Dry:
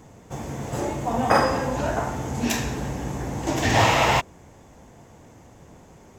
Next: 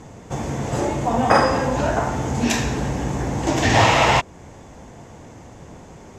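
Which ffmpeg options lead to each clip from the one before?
-filter_complex "[0:a]lowpass=8.9k,asplit=2[a][b];[b]acompressor=threshold=-30dB:ratio=6,volume=-1.5dB[c];[a][c]amix=inputs=2:normalize=0,volume=2dB"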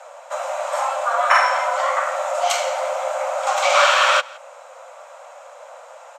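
-af "afreqshift=470,aecho=1:1:166:0.0708"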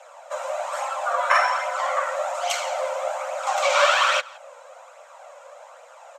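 -af "flanger=delay=0.3:depth=1.9:regen=35:speed=1.2:shape=triangular"

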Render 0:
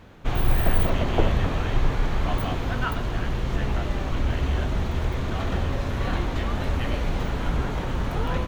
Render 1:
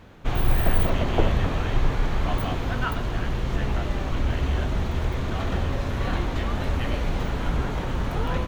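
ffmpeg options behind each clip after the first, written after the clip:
-af anull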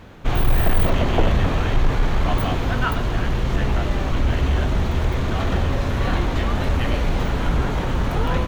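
-af "asoftclip=type=tanh:threshold=-13dB,volume=5.5dB"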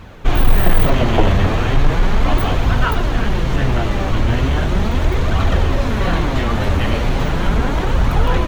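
-af "flanger=delay=0.7:depth=9.7:regen=48:speed=0.37:shape=triangular,volume=8.5dB"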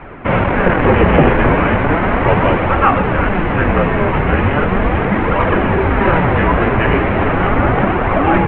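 -af "highpass=f=190:t=q:w=0.5412,highpass=f=190:t=q:w=1.307,lowpass=f=2.6k:t=q:w=0.5176,lowpass=f=2.6k:t=q:w=0.7071,lowpass=f=2.6k:t=q:w=1.932,afreqshift=-170,apsyclip=11dB,volume=-1.5dB"

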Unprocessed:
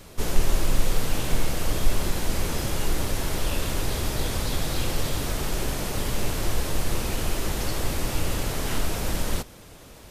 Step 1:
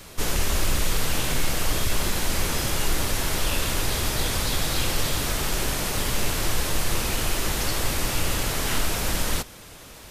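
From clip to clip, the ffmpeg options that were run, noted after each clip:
-filter_complex "[0:a]acrossover=split=950[a][b];[a]aeval=exprs='0.168*(abs(mod(val(0)/0.168+3,4)-2)-1)':c=same[c];[b]acontrast=39[d];[c][d]amix=inputs=2:normalize=0"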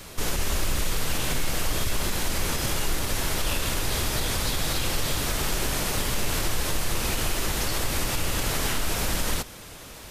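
-af "alimiter=limit=-17dB:level=0:latency=1:release=123,volume=1.5dB"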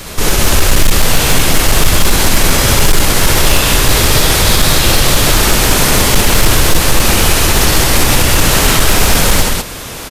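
-af "acontrast=67,aecho=1:1:64.14|192.4:0.708|0.794,asoftclip=type=hard:threshold=-9dB,volume=7.5dB"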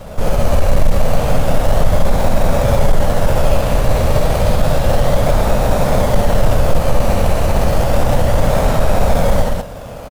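-filter_complex "[0:a]firequalizer=gain_entry='entry(210,0);entry(350,-10);entry(560,8);entry(1000,-3);entry(2400,-13);entry(4600,-16)':delay=0.05:min_phase=1,asplit=2[a][b];[b]acrusher=samples=20:mix=1:aa=0.000001:lfo=1:lforange=12:lforate=0.31,volume=-7.5dB[c];[a][c]amix=inputs=2:normalize=0,volume=-4.5dB"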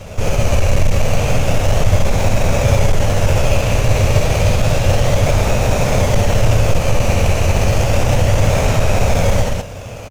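-af "equalizer=f=100:t=o:w=0.67:g=11,equalizer=f=400:t=o:w=0.67:g=4,equalizer=f=2.5k:t=o:w=0.67:g=11,equalizer=f=6.3k:t=o:w=0.67:g=11,volume=-3.5dB"

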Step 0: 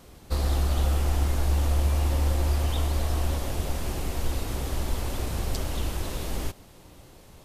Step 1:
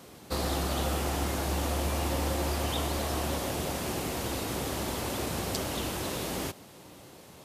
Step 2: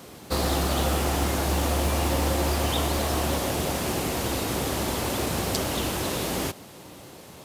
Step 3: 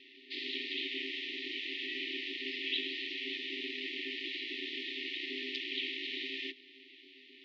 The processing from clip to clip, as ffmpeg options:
-af "highpass=140,volume=2.5dB"
-af "acrusher=bits=6:mode=log:mix=0:aa=0.000001,volume=5.5dB"
-af "afftfilt=real='re*(1-between(b*sr/4096,170,2200))':imag='im*(1-between(b*sr/4096,170,2200))':win_size=4096:overlap=0.75,highpass=f=180:t=q:w=0.5412,highpass=f=180:t=q:w=1.307,lowpass=f=3.5k:t=q:w=0.5176,lowpass=f=3.5k:t=q:w=0.7071,lowpass=f=3.5k:t=q:w=1.932,afreqshift=-92,aeval=exprs='val(0)*sin(2*PI*330*n/s)':c=same,volume=3.5dB"

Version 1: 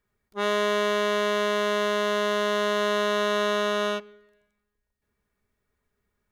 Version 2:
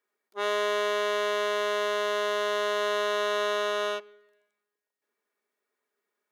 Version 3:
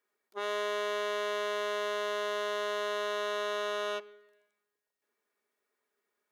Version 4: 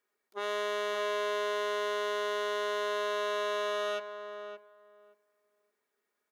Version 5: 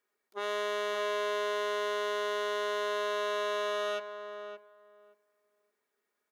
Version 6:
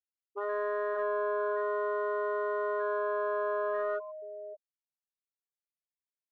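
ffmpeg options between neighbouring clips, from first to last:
-af "highpass=f=320:w=0.5412,highpass=f=320:w=1.3066,volume=-2.5dB"
-af "alimiter=level_in=1dB:limit=-24dB:level=0:latency=1:release=79,volume=-1dB"
-filter_complex "[0:a]asplit=2[a][b];[b]adelay=571,lowpass=f=1.4k:p=1,volume=-7.5dB,asplit=2[c][d];[d]adelay=571,lowpass=f=1.4k:p=1,volume=0.16,asplit=2[e][f];[f]adelay=571,lowpass=f=1.4k:p=1,volume=0.16[g];[a][c][e][g]amix=inputs=4:normalize=0"
-af anull
-af "afftfilt=real='re*gte(hypot(re,im),0.0447)':imag='im*gte(hypot(re,im),0.0447)':win_size=1024:overlap=0.75,adynamicsmooth=sensitivity=2:basefreq=3k,volume=2dB"

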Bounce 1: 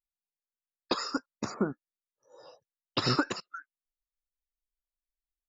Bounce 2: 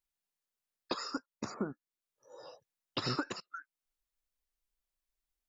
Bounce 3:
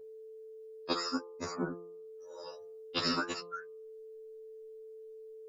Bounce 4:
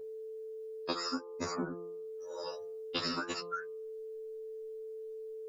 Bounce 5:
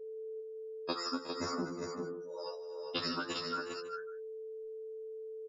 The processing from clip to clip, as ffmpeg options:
-af "acompressor=threshold=-56dB:ratio=1.5,volume=4dB"
-af "aeval=exprs='val(0)+0.002*sin(2*PI*440*n/s)':c=same,bandreject=f=172.8:t=h:w=4,bandreject=f=345.6:t=h:w=4,bandreject=f=518.4:t=h:w=4,bandreject=f=691.2:t=h:w=4,bandreject=f=864:t=h:w=4,bandreject=f=1.0368k:t=h:w=4,bandreject=f=1.2096k:t=h:w=4,afftfilt=real='re*2*eq(mod(b,4),0)':imag='im*2*eq(mod(b,4),0)':win_size=2048:overlap=0.75,volume=6.5dB"
-af "acompressor=threshold=-38dB:ratio=6,volume=5.5dB"
-af "afftdn=nr=14:nf=-46,aecho=1:1:52|166|245|364|401|550:0.133|0.119|0.178|0.211|0.501|0.119,volume=-1dB"

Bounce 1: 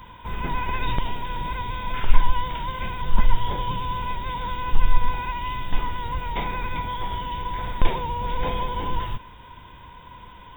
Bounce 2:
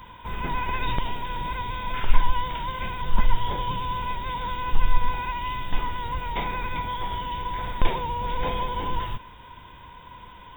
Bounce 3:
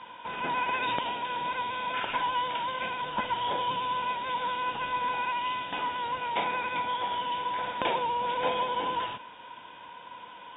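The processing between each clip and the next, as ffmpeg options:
-af "lowshelf=f=320:g=-2.5"
-af "highpass=380,equalizer=f=390:t=q:w=4:g=-6,equalizer=f=1.1k:t=q:w=4:g=-7,equalizer=f=2k:t=q:w=4:g=-7,lowpass=f=3.3k:w=0.5412,lowpass=f=3.3k:w=1.3066,volume=4.5dB" -ar 48000 -c:a libopus -b:a 192k

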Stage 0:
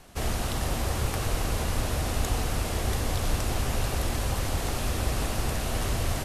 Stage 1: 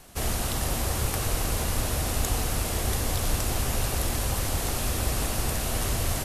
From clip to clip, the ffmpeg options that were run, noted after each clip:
-af "highshelf=f=7.2k:g=9.5"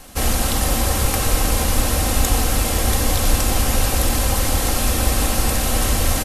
-af "aecho=1:1:3.8:0.43,volume=8dB"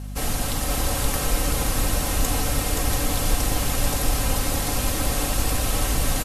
-af "aecho=1:1:7:0.33,aecho=1:1:524:0.668,aeval=exprs='val(0)+0.0562*(sin(2*PI*50*n/s)+sin(2*PI*2*50*n/s)/2+sin(2*PI*3*50*n/s)/3+sin(2*PI*4*50*n/s)/4+sin(2*PI*5*50*n/s)/5)':c=same,volume=-6.5dB"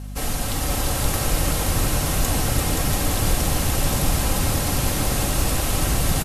-filter_complex "[0:a]asplit=8[a][b][c][d][e][f][g][h];[b]adelay=343,afreqshift=54,volume=-6dB[i];[c]adelay=686,afreqshift=108,volume=-11.4dB[j];[d]adelay=1029,afreqshift=162,volume=-16.7dB[k];[e]adelay=1372,afreqshift=216,volume=-22.1dB[l];[f]adelay=1715,afreqshift=270,volume=-27.4dB[m];[g]adelay=2058,afreqshift=324,volume=-32.8dB[n];[h]adelay=2401,afreqshift=378,volume=-38.1dB[o];[a][i][j][k][l][m][n][o]amix=inputs=8:normalize=0"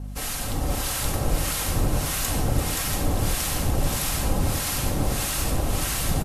-filter_complex "[0:a]acrossover=split=1000[a][b];[a]aeval=exprs='val(0)*(1-0.7/2+0.7/2*cos(2*PI*1.6*n/s))':c=same[c];[b]aeval=exprs='val(0)*(1-0.7/2-0.7/2*cos(2*PI*1.6*n/s))':c=same[d];[c][d]amix=inputs=2:normalize=0"

